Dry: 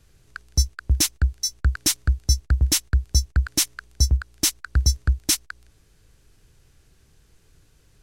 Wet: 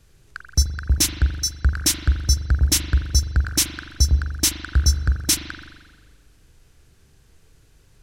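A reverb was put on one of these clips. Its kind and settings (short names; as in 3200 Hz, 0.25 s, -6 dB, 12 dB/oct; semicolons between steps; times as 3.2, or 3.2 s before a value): spring tank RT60 1.4 s, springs 41 ms, chirp 40 ms, DRR 5 dB; gain +1.5 dB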